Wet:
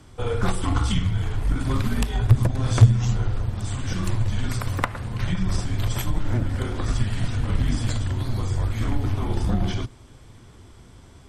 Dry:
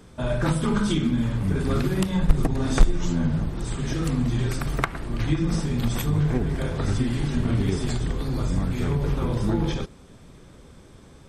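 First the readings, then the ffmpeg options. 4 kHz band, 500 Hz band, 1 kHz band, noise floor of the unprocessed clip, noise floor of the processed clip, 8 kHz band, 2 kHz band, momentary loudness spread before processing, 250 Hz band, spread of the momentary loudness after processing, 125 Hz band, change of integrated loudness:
+1.0 dB, -3.5 dB, +1.0 dB, -49 dBFS, -47 dBFS, +1.0 dB, 0.0 dB, 5 LU, -4.5 dB, 8 LU, +3.0 dB, +0.5 dB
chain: -af "afreqshift=-140,aeval=exprs='0.75*(cos(1*acos(clip(val(0)/0.75,-1,1)))-cos(1*PI/2))+0.0335*(cos(6*acos(clip(val(0)/0.75,-1,1)))-cos(6*PI/2))':c=same,volume=1dB"

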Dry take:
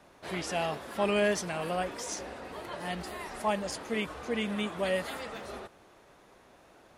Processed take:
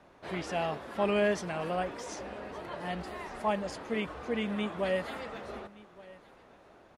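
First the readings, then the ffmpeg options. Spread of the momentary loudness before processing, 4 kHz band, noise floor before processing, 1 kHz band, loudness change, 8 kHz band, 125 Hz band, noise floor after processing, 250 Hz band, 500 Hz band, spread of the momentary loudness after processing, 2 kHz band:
13 LU, -4.0 dB, -59 dBFS, -0.5 dB, -1.0 dB, -8.5 dB, 0.0 dB, -58 dBFS, 0.0 dB, 0.0 dB, 14 LU, -2.0 dB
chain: -af "lowpass=f=2.6k:p=1,aecho=1:1:1170:0.0891"

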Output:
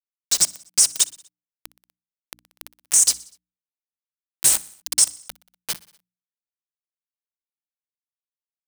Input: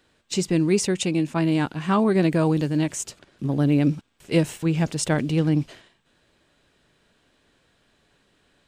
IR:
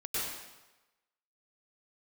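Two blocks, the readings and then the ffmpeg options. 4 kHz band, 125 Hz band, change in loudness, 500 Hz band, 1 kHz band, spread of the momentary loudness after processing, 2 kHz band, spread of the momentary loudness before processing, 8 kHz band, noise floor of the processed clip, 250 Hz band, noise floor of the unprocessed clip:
+7.5 dB, under -25 dB, +4.0 dB, -24.0 dB, -14.0 dB, 15 LU, -7.5 dB, 8 LU, +15.0 dB, under -85 dBFS, under -30 dB, -65 dBFS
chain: -af "areverse,acompressor=threshold=-35dB:ratio=10,areverse,equalizer=f=500:t=o:w=1:g=-9,equalizer=f=4k:t=o:w=1:g=-4,equalizer=f=8k:t=o:w=1:g=8,aexciter=amount=15.1:drive=7.5:freq=3.1k,aeval=exprs='val(0)*gte(abs(val(0)),0.158)':c=same,bandreject=f=60:t=h:w=6,bandreject=f=120:t=h:w=6,bandreject=f=180:t=h:w=6,bandreject=f=240:t=h:w=6,bandreject=f=300:t=h:w=6,alimiter=limit=-3.5dB:level=0:latency=1:release=70,equalizer=f=7.2k:w=2.9:g=-8,aecho=1:1:61|122|183|244:0.0794|0.0469|0.0277|0.0163,acompressor=mode=upward:threshold=-32dB:ratio=2.5,volume=3.5dB"

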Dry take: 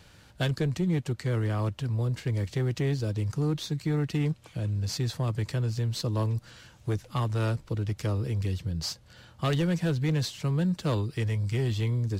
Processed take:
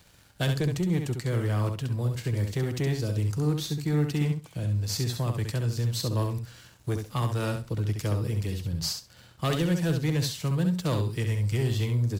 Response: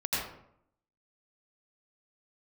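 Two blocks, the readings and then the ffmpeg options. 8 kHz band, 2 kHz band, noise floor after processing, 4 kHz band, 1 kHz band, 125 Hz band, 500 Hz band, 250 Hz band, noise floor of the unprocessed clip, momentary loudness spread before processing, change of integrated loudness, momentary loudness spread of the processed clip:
+5.0 dB, +1.0 dB, -55 dBFS, +2.5 dB, +1.0 dB, +1.0 dB, +1.0 dB, +1.0 dB, -55 dBFS, 5 LU, +1.0 dB, 5 LU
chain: -filter_complex "[0:a]highshelf=f=9k:g=12,aeval=exprs='sgn(val(0))*max(abs(val(0))-0.00126,0)':c=same,asplit=2[a][b];[b]aecho=0:1:67|134|201:0.501|0.0802|0.0128[c];[a][c]amix=inputs=2:normalize=0"

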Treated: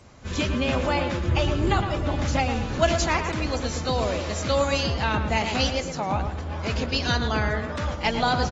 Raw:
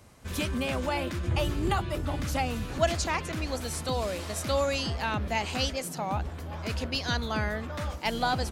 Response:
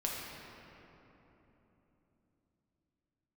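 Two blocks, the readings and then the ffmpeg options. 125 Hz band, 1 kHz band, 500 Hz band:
+5.5 dB, +5.5 dB, +5.5 dB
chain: -filter_complex "[0:a]asplit=2[a][b];[b]adelay=112,lowpass=f=2.1k:p=1,volume=-6.5dB,asplit=2[c][d];[d]adelay=112,lowpass=f=2.1k:p=1,volume=0.33,asplit=2[e][f];[f]adelay=112,lowpass=f=2.1k:p=1,volume=0.33,asplit=2[g][h];[h]adelay=112,lowpass=f=2.1k:p=1,volume=0.33[i];[a][c][e][g][i]amix=inputs=5:normalize=0,volume=4dB" -ar 32000 -c:a aac -b:a 24k

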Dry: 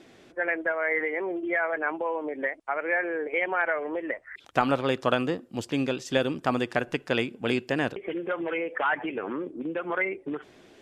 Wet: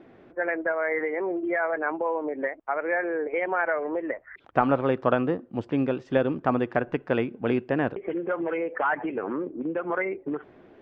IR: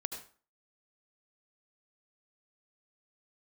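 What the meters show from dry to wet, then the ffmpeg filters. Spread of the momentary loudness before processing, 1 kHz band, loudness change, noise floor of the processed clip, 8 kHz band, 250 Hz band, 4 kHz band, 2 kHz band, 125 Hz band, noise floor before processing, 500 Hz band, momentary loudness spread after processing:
7 LU, +1.5 dB, +1.0 dB, -54 dBFS, under -20 dB, +2.5 dB, -11.5 dB, -2.0 dB, +2.5 dB, -55 dBFS, +2.5 dB, 7 LU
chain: -af "lowpass=1.5k,volume=2.5dB"

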